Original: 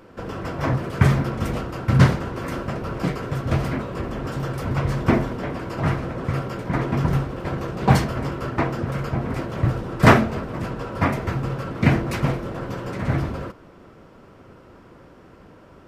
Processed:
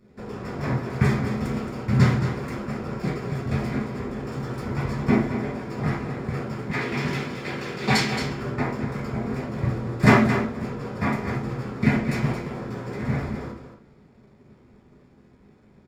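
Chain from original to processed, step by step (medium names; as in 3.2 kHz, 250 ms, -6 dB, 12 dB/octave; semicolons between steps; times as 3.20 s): 6.71–8.21 s: frequency weighting D; hysteresis with a dead band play -40.5 dBFS; delay 222 ms -9 dB; reverberation RT60 0.45 s, pre-delay 3 ms, DRR -3.5 dB; trim -8 dB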